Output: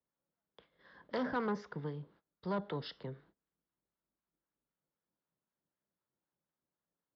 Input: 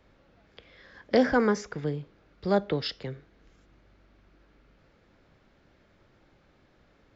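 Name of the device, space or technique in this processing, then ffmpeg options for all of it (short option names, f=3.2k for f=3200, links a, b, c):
guitar amplifier with harmonic tremolo: -filter_complex "[0:a]acrossover=split=780[a][b];[a]aeval=exprs='val(0)*(1-0.5/2+0.5/2*cos(2*PI*3.9*n/s))':c=same[c];[b]aeval=exprs='val(0)*(1-0.5/2-0.5/2*cos(2*PI*3.9*n/s))':c=same[d];[c][d]amix=inputs=2:normalize=0,asoftclip=type=tanh:threshold=-25.5dB,highpass=87,equalizer=f=96:t=q:w=4:g=-10,equalizer=f=170:t=q:w=4:g=5,equalizer=f=980:t=q:w=4:g=7,equalizer=f=2.4k:t=q:w=4:g=-9,lowpass=f=4.3k:w=0.5412,lowpass=f=4.3k:w=1.3066,agate=range=-24dB:threshold=-57dB:ratio=16:detection=peak,volume=-5.5dB"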